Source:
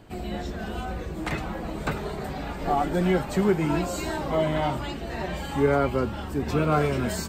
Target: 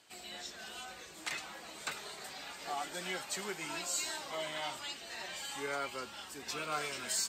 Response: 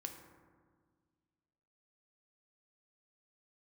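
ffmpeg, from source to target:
-af "bandpass=f=6.7k:t=q:w=0.85:csg=0,volume=3.5dB"

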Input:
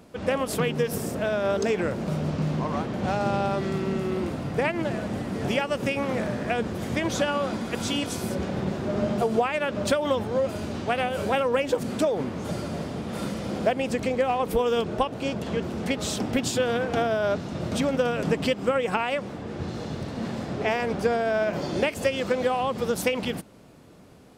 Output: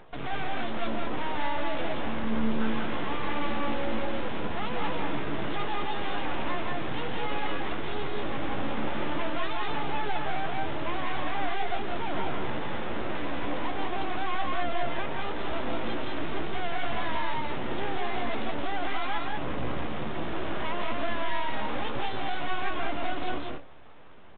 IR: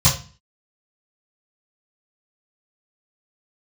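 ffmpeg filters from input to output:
-filter_complex "[0:a]lowshelf=f=84:g=2.5,bandreject=f=60:t=h:w=6,bandreject=f=120:t=h:w=6,bandreject=f=180:t=h:w=6,bandreject=f=240:t=h:w=6,bandreject=f=300:t=h:w=6,bandreject=f=360:t=h:w=6,aeval=exprs='(tanh(56.2*val(0)+0.25)-tanh(0.25))/56.2':c=same,asetrate=64194,aresample=44100,atempo=0.686977,asplit=2[a][b];[b]acrusher=bits=5:mix=0:aa=0.000001,volume=-4dB[c];[a][c]amix=inputs=2:normalize=0,aphaser=in_gain=1:out_gain=1:delay=4.2:decay=0.35:speed=0.41:type=triangular,aeval=exprs='abs(val(0))':c=same,asplit=2[d][e];[e]adelay=14,volume=-11.5dB[f];[d][f]amix=inputs=2:normalize=0,asplit=2[g][h];[h]aecho=0:1:171|198:0.596|0.668[i];[g][i]amix=inputs=2:normalize=0" -ar 8000 -c:a pcm_alaw

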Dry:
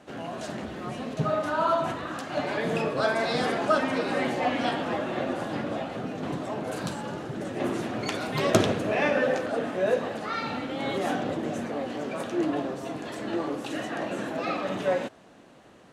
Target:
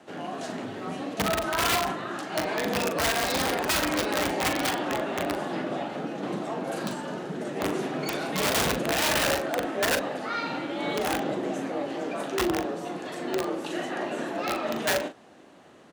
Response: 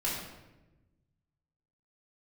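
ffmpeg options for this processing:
-filter_complex "[0:a]aeval=exprs='(mod(8.91*val(0)+1,2)-1)/8.91':c=same,afreqshift=37,asplit=2[a][b];[b]adelay=40,volume=-9dB[c];[a][c]amix=inputs=2:normalize=0"

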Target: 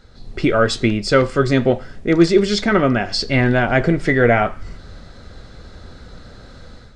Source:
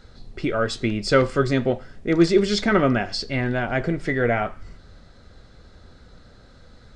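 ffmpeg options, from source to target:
-af "dynaudnorm=f=100:g=5:m=9.5dB"

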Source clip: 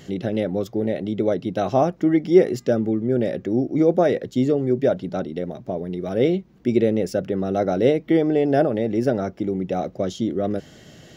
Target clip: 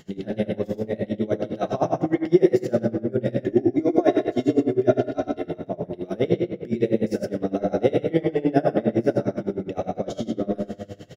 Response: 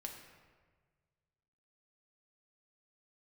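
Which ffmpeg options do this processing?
-filter_complex "[0:a]asettb=1/sr,asplit=3[a][b][c];[a]atrim=end=3.404[d];[b]atrim=start=3.4:end=5.47,asetpts=PTS-STARTPTS,afade=t=in:d=0.004:c=qsin,afade=t=out:st=2.066:d=0.004:c=qsin,aecho=1:1:2.9:0.9,atrim=end_sample=91287[e];[c]atrim=start=5.466[f];[d][e]acrossfade=d=0.004:c1=hsin:c2=qsin[g];[g][f]acrossfade=d=0.004:c1=qsin:c2=hsin,aecho=1:1:79|121:0.355|0.447[h];[1:a]atrim=start_sample=2205[i];[h][i]afir=irnorm=-1:irlink=0,aeval=exprs='val(0)*pow(10,-23*(0.5-0.5*cos(2*PI*9.8*n/s))/20)':c=same,volume=4.5dB"

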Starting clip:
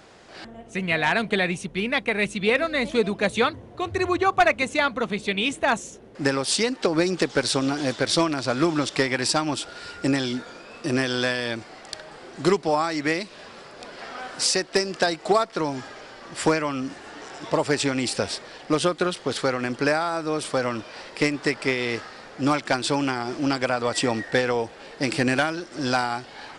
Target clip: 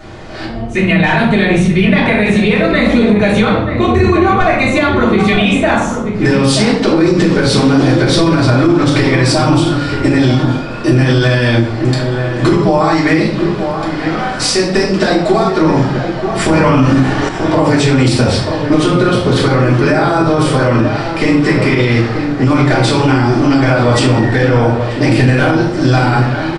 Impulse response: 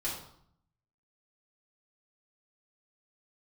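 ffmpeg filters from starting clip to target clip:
-filter_complex "[0:a]acompressor=threshold=-22dB:ratio=6,bass=f=250:g=10,treble=f=4k:g=-6,bandreject=f=50:t=h:w=6,bandreject=f=100:t=h:w=6,bandreject=f=150:t=h:w=6,bandreject=f=200:t=h:w=6,bandreject=f=250:t=h:w=6,bandreject=f=300:t=h:w=6,bandreject=f=350:t=h:w=6,asplit=2[a][b];[b]adelay=932.9,volume=-8dB,highshelf=f=4k:g=-21[c];[a][c]amix=inputs=2:normalize=0[d];[1:a]atrim=start_sample=2205[e];[d][e]afir=irnorm=-1:irlink=0,asettb=1/sr,asplit=3[f][g][h];[f]atrim=end=16.554[i];[g]atrim=start=16.55:end=17.29,asetpts=PTS-STARTPTS,afade=t=in:d=0.004:c=qsin,afade=t=out:st=0.736:d=0.004:c=qsin,acontrast=66[j];[h]atrim=start=17.286[k];[i][j]acrossfade=d=0.004:c1=hsin:c2=qsin[l];[l][k]acrossfade=d=0.004:c1=qsin:c2=hsin,alimiter=level_in=13dB:limit=-1dB:release=50:level=0:latency=1,volume=-1dB"

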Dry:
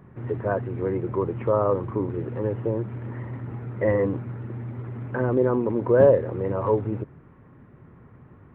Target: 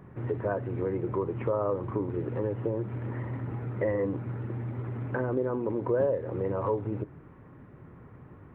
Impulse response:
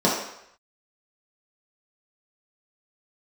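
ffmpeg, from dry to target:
-filter_complex "[0:a]acompressor=threshold=-28dB:ratio=3,asplit=2[a][b];[1:a]atrim=start_sample=2205,asetrate=61740,aresample=44100[c];[b][c]afir=irnorm=-1:irlink=0,volume=-33dB[d];[a][d]amix=inputs=2:normalize=0"

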